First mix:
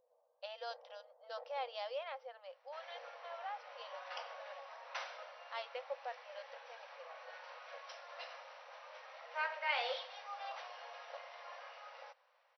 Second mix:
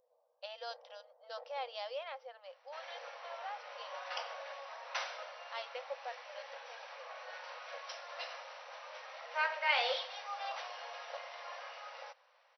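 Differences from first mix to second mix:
second sound +4.0 dB; master: add high shelf 4700 Hz +7 dB

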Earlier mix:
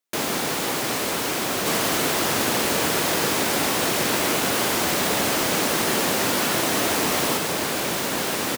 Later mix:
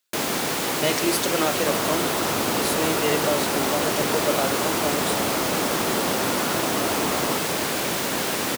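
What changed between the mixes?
speech: unmuted; second sound: add brick-wall FIR low-pass 1500 Hz

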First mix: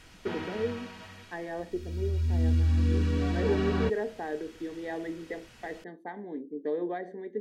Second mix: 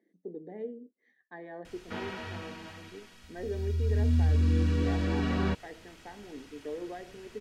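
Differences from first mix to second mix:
speech -7.0 dB; background: entry +1.65 s

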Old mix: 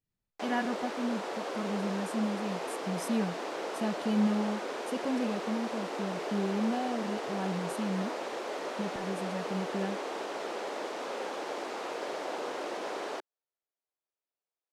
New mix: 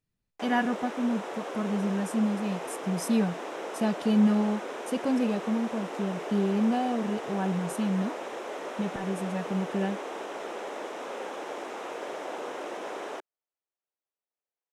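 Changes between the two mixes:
speech +5.5 dB; background: add bell 4500 Hz -10 dB 0.34 oct

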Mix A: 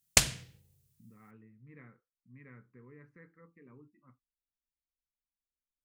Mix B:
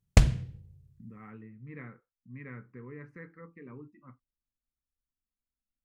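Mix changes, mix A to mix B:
speech +9.5 dB; background: add tilt -4.5 dB/oct

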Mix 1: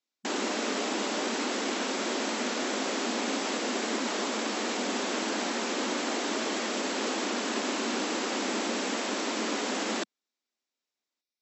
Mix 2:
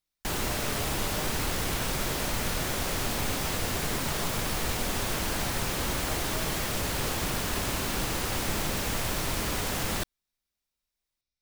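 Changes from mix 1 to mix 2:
background: add low shelf 340 Hz -9.5 dB; master: remove brick-wall FIR band-pass 210–7900 Hz

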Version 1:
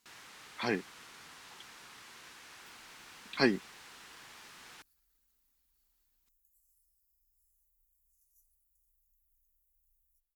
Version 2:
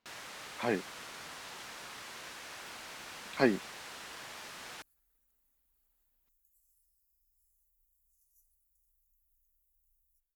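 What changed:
speech: add air absorption 240 m; first sound +6.0 dB; master: add bell 600 Hz +7.5 dB 0.54 oct

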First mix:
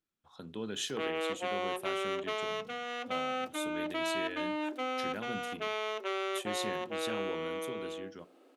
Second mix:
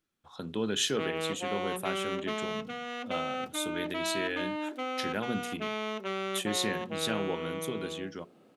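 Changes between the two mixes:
speech +7.5 dB; background: remove steep high-pass 250 Hz 96 dB/oct

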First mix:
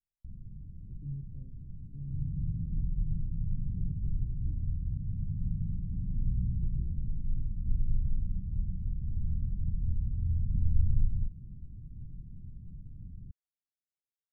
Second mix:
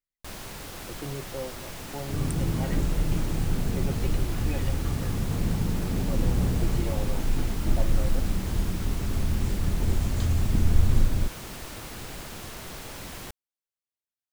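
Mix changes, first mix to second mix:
second sound +5.5 dB; master: remove inverse Chebyshev low-pass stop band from 1000 Hz, stop band 80 dB

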